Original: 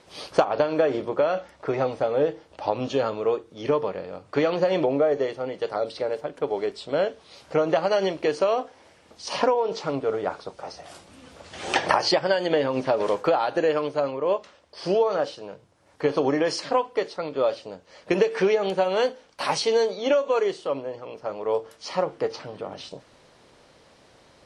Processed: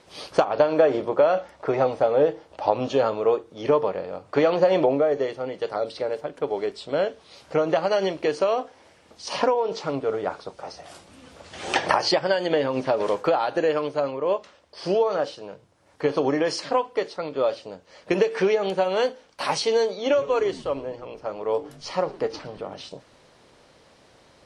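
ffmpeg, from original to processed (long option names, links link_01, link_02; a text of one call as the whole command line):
ffmpeg -i in.wav -filter_complex "[0:a]asettb=1/sr,asplit=3[link_01][link_02][link_03];[link_01]atrim=end=0.604[link_04];[link_02]atrim=start=0.6:end=4.95,asetpts=PTS-STARTPTS,afade=type=in:duration=0.004:curve=qsin,afade=type=out:start_time=4.346:duration=0.004:curve=qsin,equalizer=frequency=720:width_type=o:width=1.6:gain=4.5[link_05];[link_03]atrim=start=4.946[link_06];[link_04][link_05]acrossfade=duration=0.004:curve1=hsin:curve2=qsin[link_07];[link_07][link_06]acrossfade=duration=0.004:curve1=qsin:curve2=hsin,asettb=1/sr,asplit=3[link_08][link_09][link_10];[link_08]atrim=end=19.934[link_11];[link_09]atrim=start=19.93:end=22.66,asetpts=PTS-STARTPTS,afade=type=in:duration=0.004:curve=qsin,afade=type=out:start_time=2.726:duration=0.004:curve=qsin,asplit=5[link_12][link_13][link_14][link_15][link_16];[link_13]adelay=114,afreqshift=-150,volume=-19.5dB[link_17];[link_14]adelay=228,afreqshift=-300,volume=-25.3dB[link_18];[link_15]adelay=342,afreqshift=-450,volume=-31.2dB[link_19];[link_16]adelay=456,afreqshift=-600,volume=-37dB[link_20];[link_12][link_17][link_18][link_19][link_20]amix=inputs=5:normalize=0,atrim=end_sample=120393[link_21];[link_10]atrim=start=22.656[link_22];[link_11][link_21]acrossfade=duration=0.004:curve1=hsin:curve2=qsin[link_23];[link_23][link_22]acrossfade=duration=0.004:curve1=qsin:curve2=hsin" out.wav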